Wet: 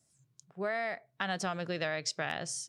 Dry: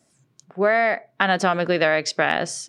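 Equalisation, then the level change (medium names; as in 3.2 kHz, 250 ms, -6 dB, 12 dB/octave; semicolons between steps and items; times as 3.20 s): FFT filter 130 Hz 0 dB, 240 Hz -11 dB, 2.2 kHz -9 dB, 7.3 kHz 0 dB; -5.5 dB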